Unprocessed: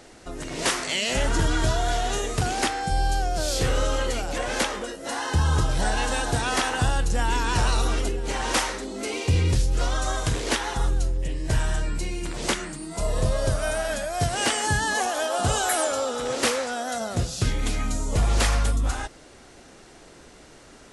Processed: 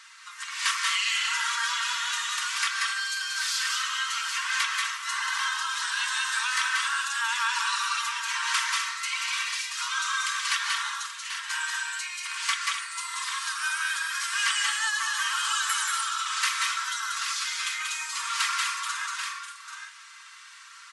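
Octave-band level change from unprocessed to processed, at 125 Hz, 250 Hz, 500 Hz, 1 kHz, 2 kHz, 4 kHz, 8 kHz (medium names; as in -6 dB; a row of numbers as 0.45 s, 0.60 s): under -40 dB, under -40 dB, under -40 dB, -2.5 dB, +3.5 dB, +3.0 dB, 0.0 dB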